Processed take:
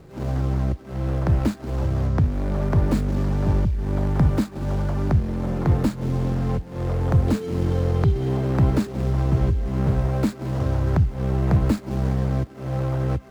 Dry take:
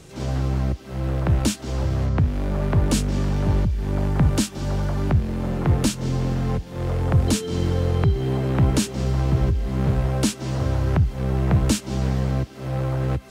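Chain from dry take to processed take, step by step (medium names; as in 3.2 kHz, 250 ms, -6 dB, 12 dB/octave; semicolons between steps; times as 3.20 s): median filter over 15 samples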